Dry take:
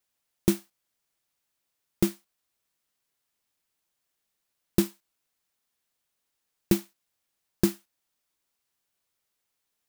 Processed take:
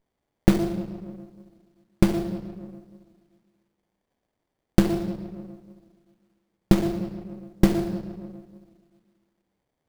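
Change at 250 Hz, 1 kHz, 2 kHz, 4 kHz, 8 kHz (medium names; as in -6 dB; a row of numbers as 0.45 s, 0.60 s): +6.5 dB, +12.0 dB, +6.5 dB, +2.0 dB, -4.0 dB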